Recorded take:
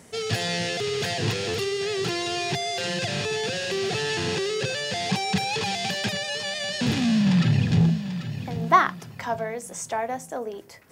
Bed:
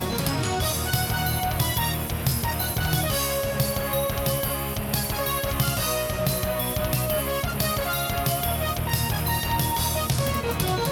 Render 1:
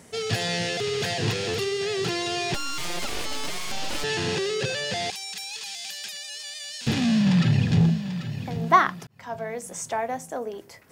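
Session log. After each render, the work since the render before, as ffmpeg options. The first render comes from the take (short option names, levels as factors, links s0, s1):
-filter_complex "[0:a]asettb=1/sr,asplit=3[s0][s1][s2];[s0]atrim=end=2.544[s3];[s1]atrim=start=2.54:end=4.04,asetpts=PTS-STARTPTS,afade=t=in:d=0.004:c=qsin,afade=t=out:st=1.496:d=0.004:c=qsin,aeval=exprs='abs(val(0))':c=same[s4];[s2]atrim=start=4.036[s5];[s3][s4]acrossfade=d=0.004:c1=hsin:c2=qsin[s6];[s6][s5]acrossfade=d=0.004:c1=qsin:c2=hsin,asettb=1/sr,asplit=3[s7][s8][s9];[s7]atrim=end=5.104[s10];[s8]atrim=start=5.1:end=6.87,asetpts=PTS-STARTPTS,afade=t=in:d=0.004:c=qsin,afade=t=out:st=1.766:d=0.004:c=qsin,aderivative[s11];[s9]atrim=start=6.866[s12];[s10][s11]acrossfade=d=0.004:c1=hsin:c2=qsin[s13];[s13][s12]acrossfade=d=0.004:c1=qsin:c2=hsin,asplit=2[s14][s15];[s14]atrim=end=9.07,asetpts=PTS-STARTPTS,afade=t=out:st=9.066:d=0.004:c=hsin[s16];[s15]atrim=start=9.07,asetpts=PTS-STARTPTS,afade=t=in:d=0.5[s17];[s16][s17]concat=n=2:v=0:a=1"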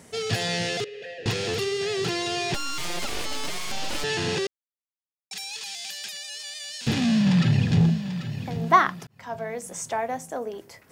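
-filter_complex "[0:a]asettb=1/sr,asplit=3[s0][s1][s2];[s0]atrim=end=0.844[s3];[s1]atrim=start=0.84:end=1.26,asetpts=PTS-STARTPTS,afade=t=in:d=0.004:c=qsin,afade=t=out:st=0.416:d=0.004:c=qsin,asplit=3[s4][s5][s6];[s4]bandpass=f=530:t=q:w=8,volume=1[s7];[s5]bandpass=f=1840:t=q:w=8,volume=0.501[s8];[s6]bandpass=f=2480:t=q:w=8,volume=0.355[s9];[s7][s8][s9]amix=inputs=3:normalize=0[s10];[s2]atrim=start=1.256[s11];[s3][s10]acrossfade=d=0.004:c1=hsin:c2=qsin[s12];[s12][s11]acrossfade=d=0.004:c1=qsin:c2=hsin,asplit=3[s13][s14][s15];[s13]atrim=end=4.47,asetpts=PTS-STARTPTS,afade=t=out:st=4.466:d=0.004:c=hsin[s16];[s14]atrim=start=4.47:end=5.31,asetpts=PTS-STARTPTS,volume=0[s17];[s15]atrim=start=5.31,asetpts=PTS-STARTPTS,afade=t=in:d=0.004:c=hsin[s18];[s16][s17][s18]concat=n=3:v=0:a=1"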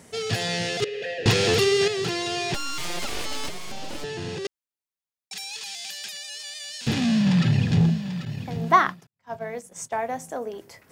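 -filter_complex "[0:a]asettb=1/sr,asplit=3[s0][s1][s2];[s0]atrim=end=0.824[s3];[s1]atrim=start=0.82:end=1.88,asetpts=PTS-STARTPTS,afade=t=in:d=0.004:c=qsin,afade=t=out:st=1.056:d=0.004:c=qsin,acontrast=87[s4];[s2]atrim=start=1.876[s5];[s3][s4]acrossfade=d=0.004:c1=hsin:c2=qsin[s6];[s6][s5]acrossfade=d=0.004:c1=qsin:c2=hsin,asettb=1/sr,asplit=3[s7][s8][s9];[s7]atrim=end=3.484[s10];[s8]atrim=start=3.48:end=4.45,asetpts=PTS-STARTPTS,afade=t=in:d=0.004:c=qsin,afade=t=out:st=0.966:d=0.004:c=qsin,acrossover=split=100|700[s11][s12][s13];[s11]acompressor=threshold=0.0224:ratio=4[s14];[s12]acompressor=threshold=0.0251:ratio=4[s15];[s13]acompressor=threshold=0.0126:ratio=4[s16];[s14][s15][s16]amix=inputs=3:normalize=0[s17];[s9]atrim=start=4.446[s18];[s10][s17]acrossfade=d=0.004:c1=hsin:c2=qsin[s19];[s19][s18]acrossfade=d=0.004:c1=qsin:c2=hsin,asettb=1/sr,asplit=3[s20][s21][s22];[s20]atrim=end=8.254[s23];[s21]atrim=start=8.25:end=10.08,asetpts=PTS-STARTPTS,afade=t=in:d=0.004:c=qsin,afade=t=out:st=1.826:d=0.004:c=qsin,agate=range=0.0224:threshold=0.0251:ratio=3:release=100:detection=peak[s24];[s22]atrim=start=10.076[s25];[s23][s24]acrossfade=d=0.004:c1=hsin:c2=qsin[s26];[s26][s25]acrossfade=d=0.004:c1=qsin:c2=hsin"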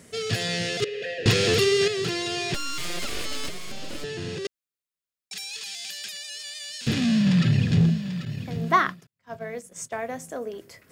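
-af "equalizer=f=850:t=o:w=0.46:g=-10,bandreject=f=5900:w=26"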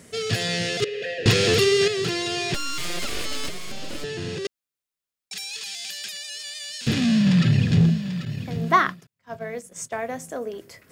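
-af "volume=1.26"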